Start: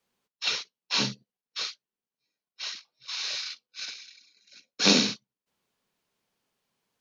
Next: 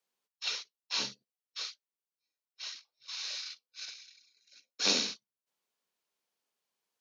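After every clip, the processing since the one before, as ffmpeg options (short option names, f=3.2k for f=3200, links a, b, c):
-af "bass=f=250:g=-13,treble=f=4k:g=4,volume=-8.5dB"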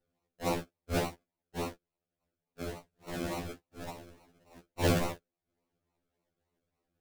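-af "acrusher=samples=37:mix=1:aa=0.000001:lfo=1:lforange=22.2:lforate=3.5,asoftclip=type=tanh:threshold=-18.5dB,afftfilt=real='re*2*eq(mod(b,4),0)':imag='im*2*eq(mod(b,4),0)':win_size=2048:overlap=0.75,volume=5.5dB"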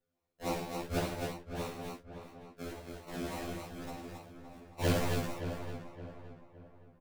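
-filter_complex "[0:a]asplit=2[a][b];[b]aecho=0:1:54|103|153|239|271|655:0.398|0.316|0.237|0.251|0.596|0.119[c];[a][c]amix=inputs=2:normalize=0,flanger=delay=7.4:depth=8.9:regen=-45:speed=0.77:shape=sinusoidal,asplit=2[d][e];[e]adelay=567,lowpass=f=2.1k:p=1,volume=-9dB,asplit=2[f][g];[g]adelay=567,lowpass=f=2.1k:p=1,volume=0.4,asplit=2[h][i];[i]adelay=567,lowpass=f=2.1k:p=1,volume=0.4,asplit=2[j][k];[k]adelay=567,lowpass=f=2.1k:p=1,volume=0.4[l];[f][h][j][l]amix=inputs=4:normalize=0[m];[d][m]amix=inputs=2:normalize=0"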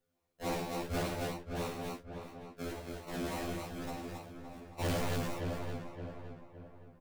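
-af "asoftclip=type=tanh:threshold=-32.5dB,volume=3dB"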